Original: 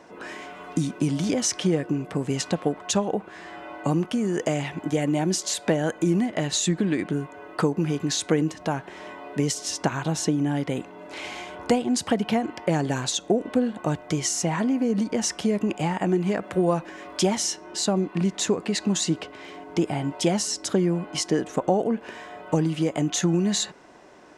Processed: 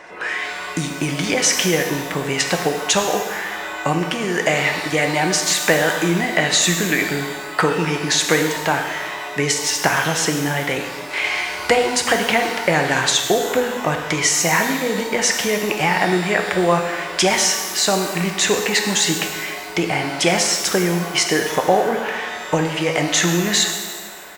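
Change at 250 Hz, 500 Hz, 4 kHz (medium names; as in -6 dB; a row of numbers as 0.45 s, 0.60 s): +0.5 dB, +6.5 dB, +11.0 dB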